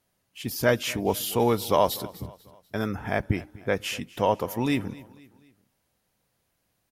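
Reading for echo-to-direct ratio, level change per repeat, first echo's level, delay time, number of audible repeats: -19.5 dB, -6.5 dB, -20.5 dB, 0.246 s, 3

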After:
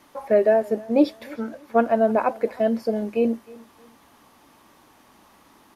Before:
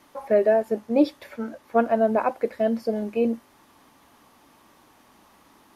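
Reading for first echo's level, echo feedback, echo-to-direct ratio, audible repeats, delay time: -23.0 dB, 32%, -22.5 dB, 2, 0.31 s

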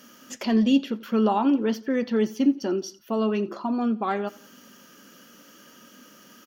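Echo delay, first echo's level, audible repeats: 87 ms, -21.5 dB, 2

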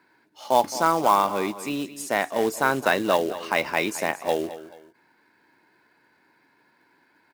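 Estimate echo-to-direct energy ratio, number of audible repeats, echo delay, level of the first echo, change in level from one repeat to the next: -14.0 dB, 2, 0.217 s, -14.5 dB, -9.5 dB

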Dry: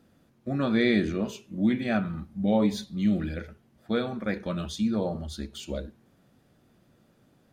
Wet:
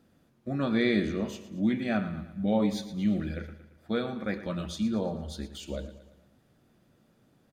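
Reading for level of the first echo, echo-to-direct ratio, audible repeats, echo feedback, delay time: -13.5 dB, -12.5 dB, 4, 49%, 0.114 s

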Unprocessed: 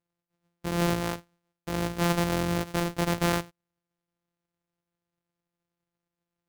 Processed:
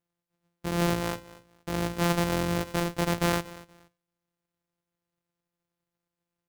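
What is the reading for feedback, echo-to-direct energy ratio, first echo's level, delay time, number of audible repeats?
23%, -19.0 dB, -19.0 dB, 0.236 s, 2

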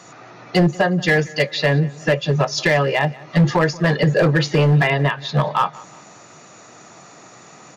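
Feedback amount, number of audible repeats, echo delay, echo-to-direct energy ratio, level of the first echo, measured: 38%, 2, 0.182 s, -21.5 dB, -22.0 dB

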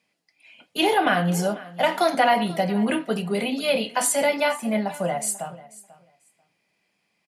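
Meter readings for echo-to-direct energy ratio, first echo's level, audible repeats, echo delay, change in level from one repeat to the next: -19.0 dB, -19.0 dB, 2, 0.49 s, -16.0 dB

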